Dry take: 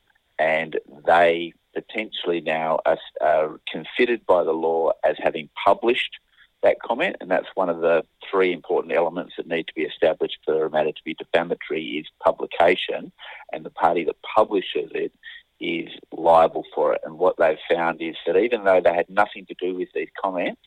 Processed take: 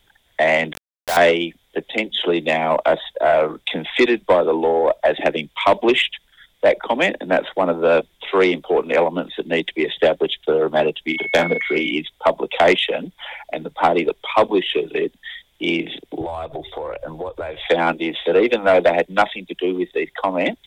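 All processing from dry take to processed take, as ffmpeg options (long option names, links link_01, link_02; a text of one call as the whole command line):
ffmpeg -i in.wav -filter_complex "[0:a]asettb=1/sr,asplit=3[link_01][link_02][link_03];[link_01]atrim=end=0.734[link_04];[link_02]atrim=start=0.73:end=1.17,asetpts=PTS-STARTPTS,afade=type=in:duration=0.004:curve=qsin,afade=type=out:start_time=0.436:duration=0.004:curve=qsin,highpass=630,lowpass=2100,acompressor=threshold=-36dB:ratio=1.5:attack=3.2:release=140:knee=1:detection=peak,aeval=exprs='val(0)*gte(abs(val(0)),0.0501)':channel_layout=same[link_05];[link_03]atrim=start=1.166[link_06];[link_04][link_05]acrossfade=duration=0.004:curve1=hsin:curve2=qsin[link_07];[link_07][link_06]acrossfade=duration=0.004:curve1=qsin:curve2=hsin,asettb=1/sr,asplit=3[link_08][link_09][link_10];[link_08]atrim=end=11.084[link_11];[link_09]atrim=start=11.08:end=11.91,asetpts=PTS-STARTPTS,afade=type=in:duration=0.004:curve=qsin,afade=type=out:start_time=0.826:duration=0.004:curve=qsin,aeval=exprs='val(0)+0.0282*sin(2*PI*2200*n/s)':channel_layout=same,volume=11dB,asoftclip=hard,volume=-11dB,asplit=2[link_12][link_13];[link_13]adelay=41,volume=-7.5dB[link_14];[link_12][link_14]amix=inputs=2:normalize=0,atrim=end_sample=36603[link_15];[link_10]atrim=start=11.906[link_16];[link_11][link_15]acrossfade=duration=0.004:curve1=hsin:curve2=qsin[link_17];[link_17][link_16]acrossfade=duration=0.004:curve1=qsin:curve2=hsin,asettb=1/sr,asplit=3[link_18][link_19][link_20];[link_18]atrim=end=16.214[link_21];[link_19]atrim=start=16.21:end=17.66,asetpts=PTS-STARTPTS,afade=type=in:duration=0.004:curve=qsin,afade=type=out:start_time=1.446:duration=0.004:curve=qsin,lowshelf=frequency=140:width_type=q:width=3:gain=12.5,acompressor=threshold=-28dB:ratio=16:attack=3.2:release=140:knee=1:detection=peak[link_22];[link_20]atrim=start=17.656[link_23];[link_21][link_22]acrossfade=duration=0.004:curve1=hsin:curve2=qsin[link_24];[link_24][link_23]acrossfade=duration=0.004:curve1=qsin:curve2=hsin,lowshelf=frequency=270:gain=4.5,acontrast=82,highshelf=frequency=3400:gain=8,volume=-3.5dB" out.wav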